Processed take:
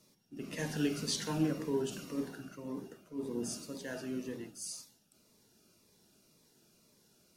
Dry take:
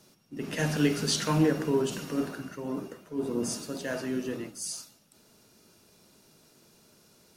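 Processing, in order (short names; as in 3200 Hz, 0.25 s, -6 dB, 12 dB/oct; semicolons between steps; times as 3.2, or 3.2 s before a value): notches 50/100/150 Hz; cascading phaser falling 1.9 Hz; gain -6.5 dB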